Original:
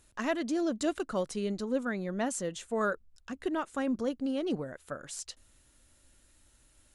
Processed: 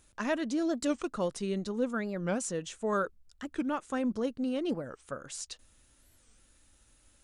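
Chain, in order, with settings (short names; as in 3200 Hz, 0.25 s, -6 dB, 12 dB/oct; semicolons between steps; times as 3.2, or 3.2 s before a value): speed mistake 25 fps video run at 24 fps; record warp 45 rpm, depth 250 cents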